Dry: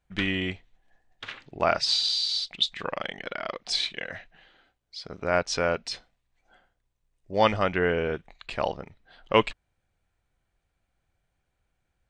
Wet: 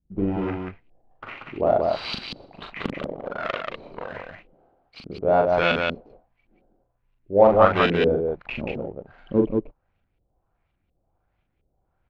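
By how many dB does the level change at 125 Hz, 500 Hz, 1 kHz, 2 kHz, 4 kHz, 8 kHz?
+5.0 dB, +7.0 dB, +4.5 dB, +1.5 dB, -7.5 dB, under -15 dB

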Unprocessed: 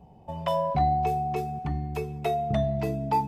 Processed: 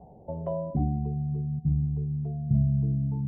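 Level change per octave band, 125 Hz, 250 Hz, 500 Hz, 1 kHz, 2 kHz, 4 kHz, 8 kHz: +6.0 dB, +3.0 dB, -8.5 dB, -19.0 dB, under -35 dB, under -35 dB, n/a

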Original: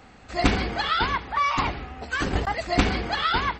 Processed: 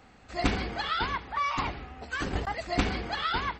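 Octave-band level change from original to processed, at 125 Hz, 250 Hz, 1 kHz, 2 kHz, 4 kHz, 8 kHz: -6.0, -6.0, -6.0, -6.0, -6.0, -6.0 dB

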